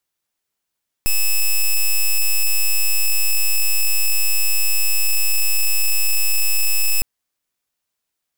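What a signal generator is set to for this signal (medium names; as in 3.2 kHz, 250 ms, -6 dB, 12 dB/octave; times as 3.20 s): pulse 2.6 kHz, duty 6% -15 dBFS 5.96 s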